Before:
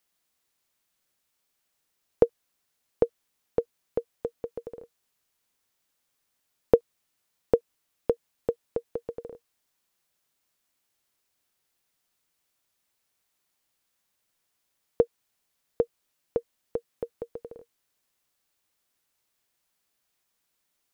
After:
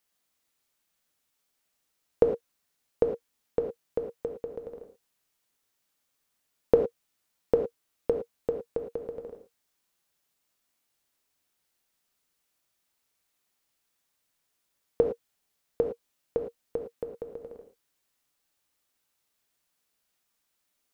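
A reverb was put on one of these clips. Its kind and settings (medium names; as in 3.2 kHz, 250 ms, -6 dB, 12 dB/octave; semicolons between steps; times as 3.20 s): gated-style reverb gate 130 ms flat, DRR 4 dB; trim -2 dB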